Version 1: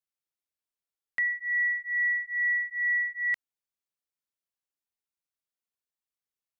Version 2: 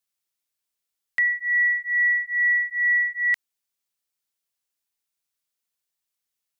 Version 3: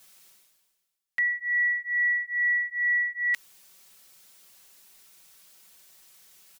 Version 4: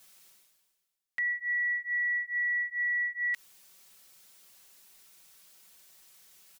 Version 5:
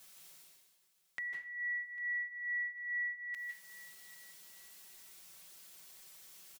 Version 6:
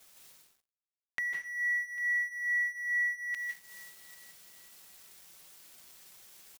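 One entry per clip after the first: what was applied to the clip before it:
high shelf 2100 Hz +8 dB; gain +2.5 dB
comb 5.3 ms, depth 67%; reverse; upward compressor, threshold -25 dBFS; reverse; gain -5.5 dB
limiter -23.5 dBFS, peak gain reduction 6.5 dB; gain -2.5 dB
compressor 2:1, threshold -48 dBFS, peak gain reduction 10.5 dB; feedback echo 0.799 s, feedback 26%, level -19 dB; on a send at -2.5 dB: reverb RT60 0.40 s, pre-delay 0.142 s
crossover distortion -58 dBFS; gain +7.5 dB

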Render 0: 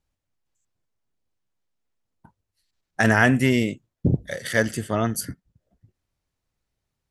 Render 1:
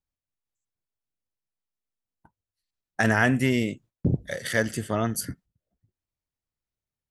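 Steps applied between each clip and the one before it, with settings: gate -48 dBFS, range -12 dB; in parallel at -2 dB: compressor, threshold -25 dBFS, peak gain reduction 12.5 dB; on the sum: gain -5.5 dB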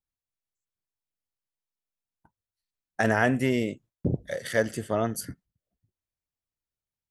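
dynamic EQ 550 Hz, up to +7 dB, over -38 dBFS, Q 0.89; gain -4.5 dB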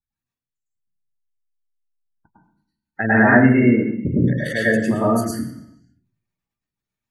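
spectral gate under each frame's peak -20 dB strong; reverb RT60 0.70 s, pre-delay 0.101 s, DRR -7 dB; gain +1.5 dB

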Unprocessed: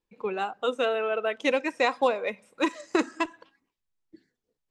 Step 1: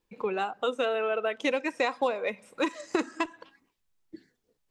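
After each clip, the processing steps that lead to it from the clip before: compressor 2:1, threshold -38 dBFS, peak gain reduction 11 dB; gain +6.5 dB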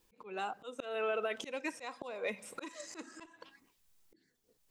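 high shelf 4700 Hz +9 dB; auto swell 0.679 s; limiter -30.5 dBFS, peak gain reduction 11 dB; gain +4.5 dB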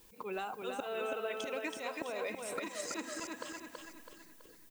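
compressor 5:1, threshold -47 dBFS, peak gain reduction 14.5 dB; added noise violet -75 dBFS; on a send: feedback echo 0.328 s, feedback 44%, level -4 dB; on the sum: gain +9.5 dB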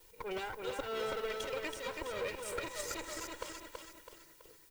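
minimum comb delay 2.1 ms; gain +1.5 dB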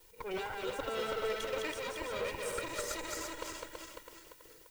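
reverse delay 0.168 s, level -2.5 dB

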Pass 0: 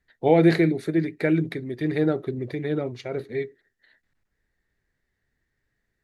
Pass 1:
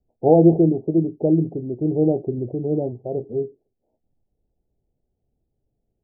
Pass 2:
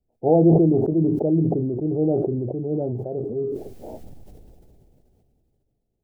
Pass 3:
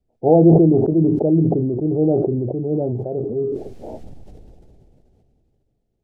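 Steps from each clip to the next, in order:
steep low-pass 820 Hz 72 dB/oct; gain +4 dB
sustainer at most 21 dB/s; gain -3.5 dB
air absorption 56 m; gain +4 dB

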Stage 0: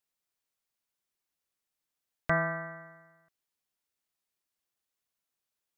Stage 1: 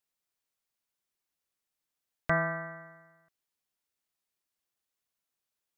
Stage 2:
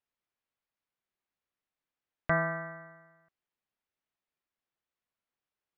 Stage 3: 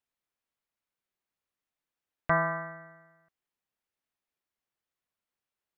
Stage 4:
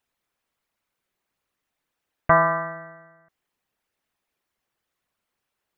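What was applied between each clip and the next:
nothing audible
LPF 2800 Hz 12 dB/oct
dynamic EQ 1000 Hz, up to +8 dB, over -47 dBFS, Q 2.5
formant sharpening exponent 1.5; gain +9 dB

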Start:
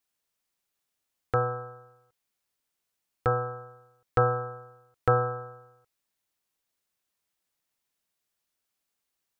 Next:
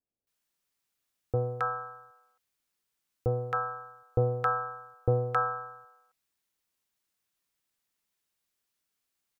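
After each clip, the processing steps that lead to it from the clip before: bands offset in time lows, highs 0.27 s, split 660 Hz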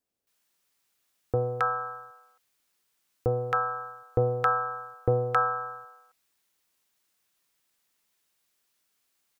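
low shelf 190 Hz -6 dB; in parallel at +0.5 dB: compressor, threshold -37 dBFS, peak gain reduction 13 dB; on the sum: gain +1.5 dB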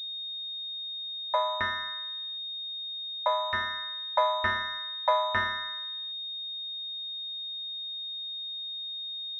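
frequency shift +500 Hz; pulse-width modulation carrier 3700 Hz

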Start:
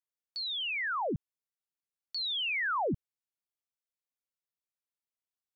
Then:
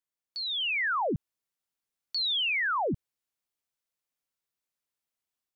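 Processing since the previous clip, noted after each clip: limiter -30 dBFS, peak gain reduction 3.5 dB; AGC gain up to 5 dB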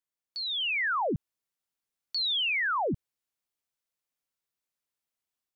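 nothing audible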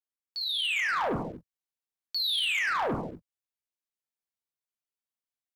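non-linear reverb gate 0.28 s falling, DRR 1.5 dB; sample leveller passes 2; gain -7 dB

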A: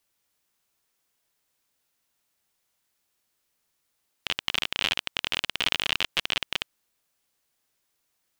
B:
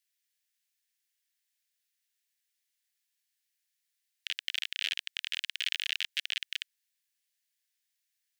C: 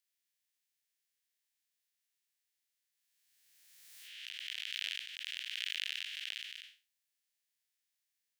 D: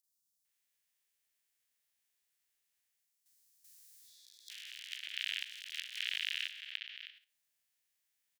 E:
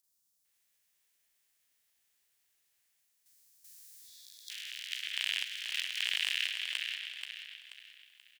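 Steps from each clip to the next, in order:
elliptic high-pass 1700 Hz, stop band 60 dB; gain -5.5 dB
time blur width 0.191 s; backwards sustainer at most 29 dB/s; gain -2.5 dB
three bands offset in time highs, lows, mids 40/450 ms, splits 300/4400 Hz; level quantiser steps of 11 dB; spectral repair 3.73–4.48, 480–3300 Hz before; gain +5.5 dB
overloaded stage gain 24 dB; feedback echo 0.482 s, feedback 36%, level -6 dB; gain +5.5 dB

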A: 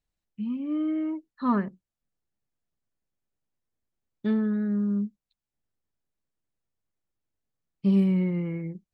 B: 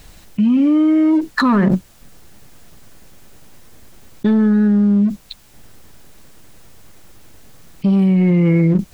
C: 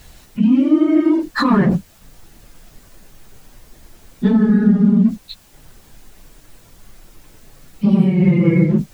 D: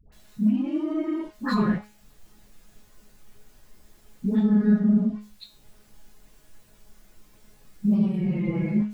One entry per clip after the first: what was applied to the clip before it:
sample leveller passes 1; fast leveller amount 100%; gain +4.5 dB
phase scrambler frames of 50 ms
soft clip -4.5 dBFS, distortion -23 dB; resonator 210 Hz, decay 0.39 s, harmonics all, mix 80%; dispersion highs, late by 0.124 s, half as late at 730 Hz

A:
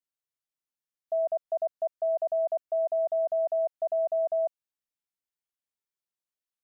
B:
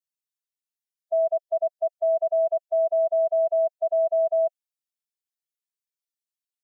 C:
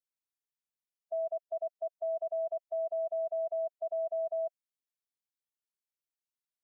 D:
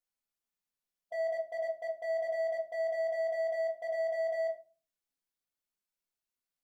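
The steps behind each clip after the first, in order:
per-bin expansion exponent 1.5; comb 6 ms, depth 96%
limiter -22.5 dBFS, peak gain reduction 5 dB; gain -6.5 dB
hard clip -33.5 dBFS, distortion -14 dB; reverb RT60 0.35 s, pre-delay 4 ms, DRR -1.5 dB; gain -1.5 dB

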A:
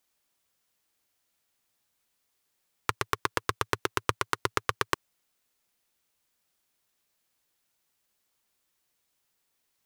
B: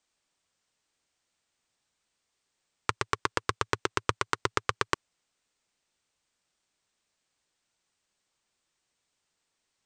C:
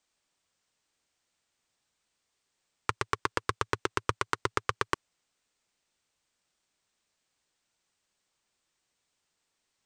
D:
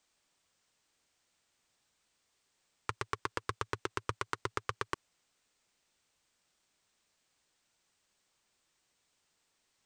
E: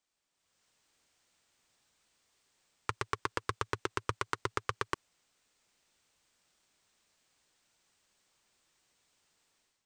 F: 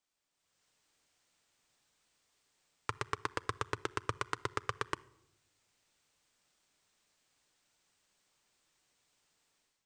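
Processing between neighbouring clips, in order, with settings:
steep low-pass 8900 Hz 96 dB/oct
soft clip -6 dBFS, distortion -16 dB
limiter -17 dBFS, peak gain reduction 10 dB; gain +2.5 dB
AGC gain up to 12 dB; gain -9 dB
reverb RT60 0.85 s, pre-delay 7 ms, DRR 17 dB; gain -2 dB

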